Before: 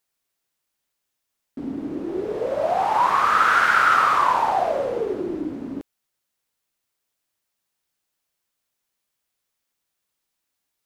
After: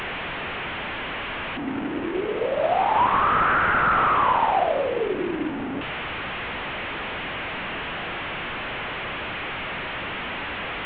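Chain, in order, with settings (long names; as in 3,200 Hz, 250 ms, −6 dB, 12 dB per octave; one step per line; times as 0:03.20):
linear delta modulator 16 kbit/s, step −23.5 dBFS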